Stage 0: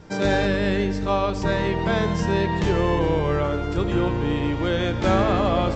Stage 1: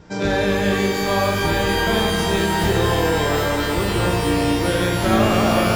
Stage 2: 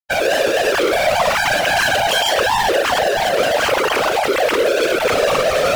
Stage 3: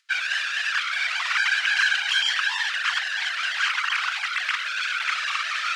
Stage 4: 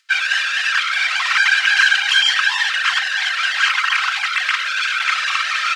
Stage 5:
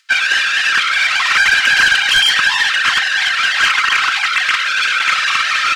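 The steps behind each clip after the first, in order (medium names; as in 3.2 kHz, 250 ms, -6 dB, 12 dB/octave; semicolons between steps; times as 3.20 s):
on a send: flutter echo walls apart 7.7 m, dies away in 0.47 s; on the sum: pitch-shifted reverb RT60 3.5 s, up +12 st, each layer -2 dB, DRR 5 dB
formants replaced by sine waves; fuzz box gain 31 dB, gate -38 dBFS; whisper effect; trim -2 dB
steep high-pass 1.3 kHz 36 dB/octave; upward compressor, threshold -36 dBFS; distance through air 110 m; trim -1.5 dB
comb 3.8 ms, depth 39%; trim +6.5 dB
saturation -11 dBFS, distortion -15 dB; trim +5.5 dB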